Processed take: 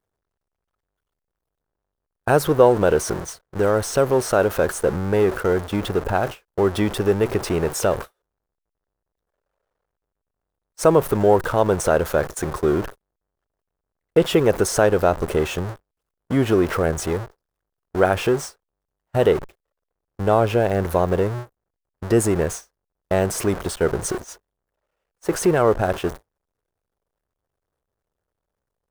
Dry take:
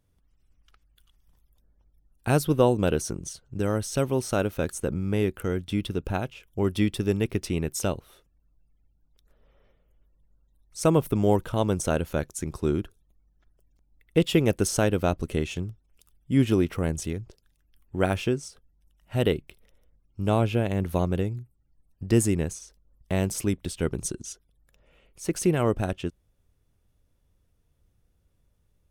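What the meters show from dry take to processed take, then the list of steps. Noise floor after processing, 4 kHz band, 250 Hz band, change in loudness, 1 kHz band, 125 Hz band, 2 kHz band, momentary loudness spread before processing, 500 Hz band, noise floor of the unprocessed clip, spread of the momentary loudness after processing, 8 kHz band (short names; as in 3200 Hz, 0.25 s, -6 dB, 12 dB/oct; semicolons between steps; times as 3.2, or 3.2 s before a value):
-83 dBFS, +4.0 dB, +2.5 dB, +6.0 dB, +9.5 dB, +1.5 dB, +8.0 dB, 12 LU, +9.0 dB, -69 dBFS, 10 LU, +4.5 dB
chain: zero-crossing step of -30.5 dBFS; gate -31 dBFS, range -48 dB; band shelf 820 Hz +10 dB 2.5 oct; in parallel at -2 dB: limiter -14 dBFS, peak gain reduction 15 dB; on the sum: gain -4 dB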